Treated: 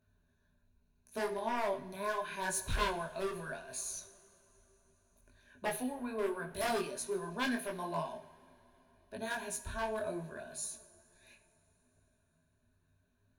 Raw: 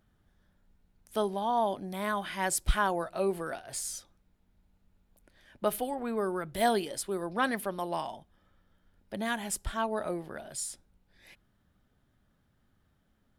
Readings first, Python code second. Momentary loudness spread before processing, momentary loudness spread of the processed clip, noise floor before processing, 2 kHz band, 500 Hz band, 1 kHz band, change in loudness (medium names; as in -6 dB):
9 LU, 9 LU, -71 dBFS, -3.5 dB, -5.0 dB, -6.5 dB, -5.5 dB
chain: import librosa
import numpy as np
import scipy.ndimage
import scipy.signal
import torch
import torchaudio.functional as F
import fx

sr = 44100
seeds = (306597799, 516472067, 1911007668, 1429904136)

y = fx.ripple_eq(x, sr, per_octave=1.5, db=14)
y = 10.0 ** (-21.0 / 20.0) * (np.abs((y / 10.0 ** (-21.0 / 20.0) + 3.0) % 4.0 - 2.0) - 1.0)
y = fx.rev_double_slope(y, sr, seeds[0], early_s=0.58, late_s=4.1, knee_db=-18, drr_db=9.0)
y = fx.detune_double(y, sr, cents=26)
y = F.gain(torch.from_numpy(y), -3.5).numpy()